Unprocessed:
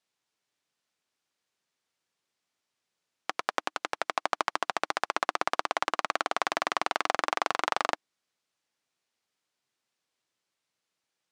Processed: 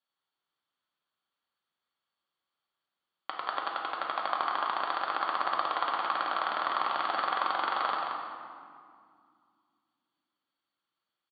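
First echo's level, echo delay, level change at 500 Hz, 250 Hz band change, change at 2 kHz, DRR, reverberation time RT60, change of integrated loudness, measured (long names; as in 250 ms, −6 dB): −5.5 dB, 178 ms, −4.0 dB, −4.5 dB, −3.0 dB, −2.5 dB, 2.2 s, −0.5 dB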